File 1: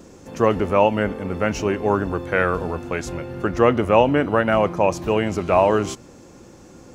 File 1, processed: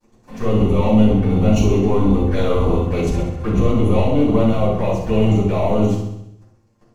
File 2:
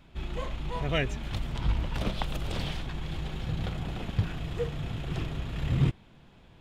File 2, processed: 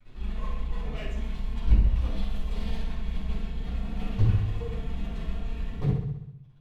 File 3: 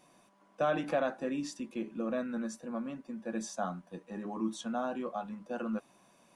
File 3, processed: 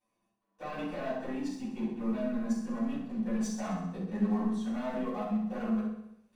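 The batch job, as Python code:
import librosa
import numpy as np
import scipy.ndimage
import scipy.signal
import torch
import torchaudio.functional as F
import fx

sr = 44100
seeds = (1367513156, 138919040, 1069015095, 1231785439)

y = fx.highpass(x, sr, hz=54.0, slope=6)
y = fx.low_shelf(y, sr, hz=78.0, db=11.5)
y = fx.rider(y, sr, range_db=4, speed_s=2.0)
y = fx.leveller(y, sr, passes=3)
y = fx.level_steps(y, sr, step_db=15)
y = fx.env_flanger(y, sr, rest_ms=9.0, full_db=-13.5)
y = fx.echo_feedback(y, sr, ms=65, feedback_pct=59, wet_db=-8.5)
y = fx.room_shoebox(y, sr, seeds[0], volume_m3=440.0, walls='furnished', distance_m=8.7)
y = F.gain(torch.from_numpy(y), -15.0).numpy()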